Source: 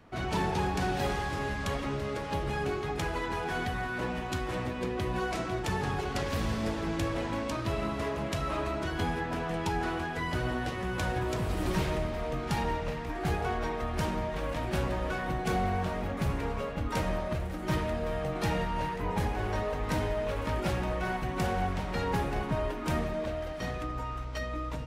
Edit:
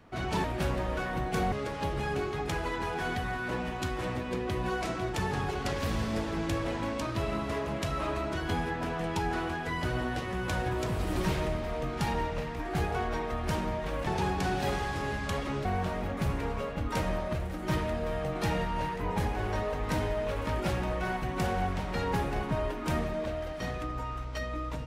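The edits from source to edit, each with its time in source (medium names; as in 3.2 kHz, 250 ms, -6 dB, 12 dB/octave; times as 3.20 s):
0.44–2.02 s: swap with 14.57–15.65 s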